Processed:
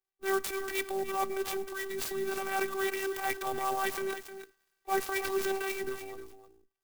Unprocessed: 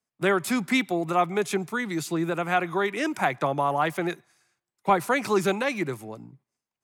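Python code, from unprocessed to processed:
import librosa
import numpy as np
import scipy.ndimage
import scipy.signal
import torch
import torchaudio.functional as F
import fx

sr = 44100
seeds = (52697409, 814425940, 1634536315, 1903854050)

y = fx.high_shelf(x, sr, hz=4300.0, db=8.5, at=(1.91, 4.05))
y = fx.transient(y, sr, attack_db=-10, sustain_db=6)
y = fx.robotise(y, sr, hz=388.0)
y = y + 10.0 ** (-11.0 / 20.0) * np.pad(y, (int(307 * sr / 1000.0), 0))[:len(y)]
y = fx.clock_jitter(y, sr, seeds[0], jitter_ms=0.038)
y = y * 10.0 ** (-4.0 / 20.0)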